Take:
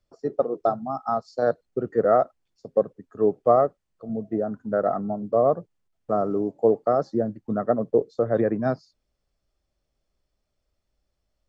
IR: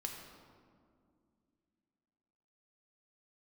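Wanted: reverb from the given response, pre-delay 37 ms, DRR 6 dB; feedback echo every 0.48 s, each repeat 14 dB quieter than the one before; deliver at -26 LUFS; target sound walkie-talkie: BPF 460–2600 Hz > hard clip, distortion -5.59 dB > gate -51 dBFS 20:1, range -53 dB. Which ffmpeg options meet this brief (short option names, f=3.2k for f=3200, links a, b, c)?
-filter_complex "[0:a]aecho=1:1:480|960:0.2|0.0399,asplit=2[a][b];[1:a]atrim=start_sample=2205,adelay=37[c];[b][c]afir=irnorm=-1:irlink=0,volume=-5dB[d];[a][d]amix=inputs=2:normalize=0,highpass=460,lowpass=2.6k,asoftclip=type=hard:threshold=-24.5dB,agate=range=-53dB:threshold=-51dB:ratio=20,volume=4.5dB"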